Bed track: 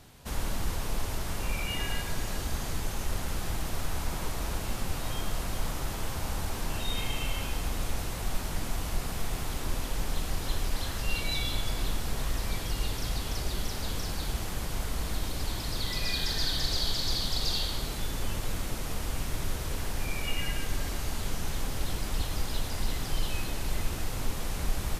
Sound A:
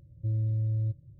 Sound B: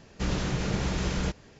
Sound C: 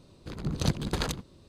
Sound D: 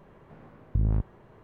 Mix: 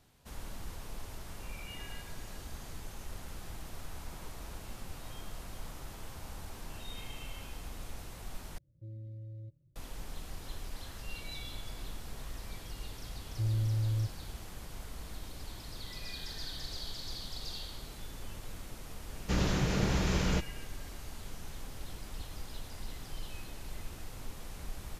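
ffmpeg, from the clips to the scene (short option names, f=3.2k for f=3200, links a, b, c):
-filter_complex "[1:a]asplit=2[a][b];[0:a]volume=-12dB[c];[a]equalizer=f=83:w=1.1:g=-11.5[d];[c]asplit=2[e][f];[e]atrim=end=8.584[g];[d]atrim=end=1.18,asetpts=PTS-STARTPTS,volume=-9dB[h];[f]atrim=start=9.756[i];[b]atrim=end=1.18,asetpts=PTS-STARTPTS,volume=-2.5dB,afade=t=in:d=0.004:c=hsin,afade=t=out:st=1.176:d=0.004:c=hsin,adelay=13150[j];[2:a]atrim=end=1.59,asetpts=PTS-STARTPTS,volume=-1dB,afade=t=in:d=0.004:c=hsin,afade=t=out:st=1.586:d=0.004:c=hsin,adelay=19090[k];[g][h]acrossfade=d=0.004:c1=hsin:c2=hsin[l];[l][i]acrossfade=d=0.004:c1=hsin:c2=hsin[m];[m][j][k]amix=inputs=3:normalize=0"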